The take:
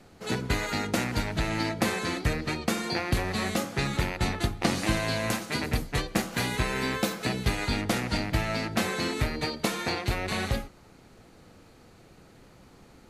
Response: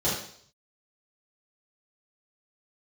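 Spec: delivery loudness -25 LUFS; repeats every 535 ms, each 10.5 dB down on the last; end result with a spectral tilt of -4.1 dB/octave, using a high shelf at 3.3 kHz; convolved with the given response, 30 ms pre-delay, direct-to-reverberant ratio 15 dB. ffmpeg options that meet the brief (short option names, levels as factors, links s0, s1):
-filter_complex "[0:a]highshelf=f=3300:g=3,aecho=1:1:535|1070|1605:0.299|0.0896|0.0269,asplit=2[s0][s1];[1:a]atrim=start_sample=2205,adelay=30[s2];[s1][s2]afir=irnorm=-1:irlink=0,volume=0.0473[s3];[s0][s3]amix=inputs=2:normalize=0,volume=1.41"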